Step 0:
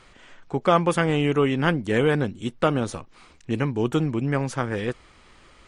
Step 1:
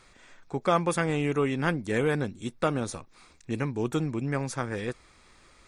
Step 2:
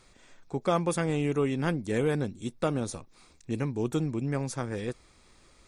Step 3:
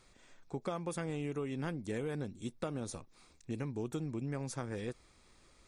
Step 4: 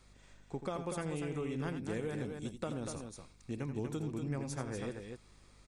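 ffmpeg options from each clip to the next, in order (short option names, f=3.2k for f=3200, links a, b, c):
-af "highshelf=f=4.1k:g=7.5,bandreject=f=3k:w=6.5,volume=-5.5dB"
-af "equalizer=f=1.6k:t=o:w=1.9:g=-6"
-af "acompressor=threshold=-29dB:ratio=6,volume=-5dB"
-af "aecho=1:1:84.55|242:0.316|0.501,aeval=exprs='val(0)+0.000891*(sin(2*PI*50*n/s)+sin(2*PI*2*50*n/s)/2+sin(2*PI*3*50*n/s)/3+sin(2*PI*4*50*n/s)/4+sin(2*PI*5*50*n/s)/5)':c=same,volume=-1dB"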